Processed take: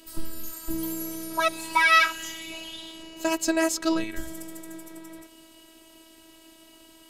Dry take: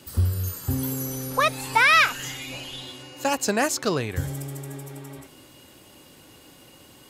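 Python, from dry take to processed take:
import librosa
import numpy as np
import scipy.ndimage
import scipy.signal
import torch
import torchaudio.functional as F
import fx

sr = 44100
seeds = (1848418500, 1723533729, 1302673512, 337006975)

y = fx.low_shelf(x, sr, hz=280.0, db=7.5, at=(2.97, 4.04))
y = fx.robotise(y, sr, hz=324.0)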